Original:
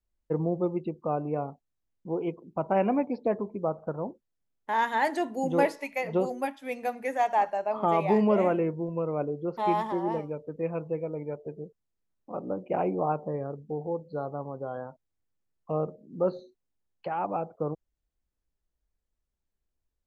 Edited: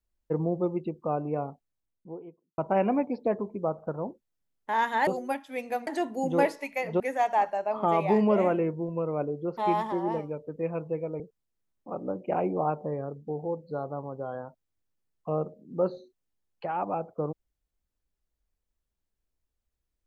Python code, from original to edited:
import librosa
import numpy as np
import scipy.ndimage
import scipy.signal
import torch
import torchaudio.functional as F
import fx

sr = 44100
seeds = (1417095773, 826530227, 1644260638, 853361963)

y = fx.studio_fade_out(x, sr, start_s=1.47, length_s=1.11)
y = fx.edit(y, sr, fx.move(start_s=6.2, length_s=0.8, to_s=5.07),
    fx.cut(start_s=11.2, length_s=0.42), tone=tone)